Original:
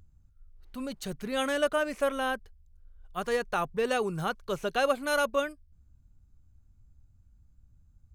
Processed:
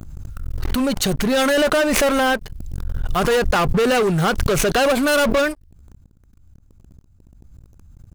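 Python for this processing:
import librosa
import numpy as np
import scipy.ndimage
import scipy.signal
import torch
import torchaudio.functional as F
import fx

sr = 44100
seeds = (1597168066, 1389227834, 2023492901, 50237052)

y = fx.leveller(x, sr, passes=5)
y = fx.pre_swell(y, sr, db_per_s=22.0)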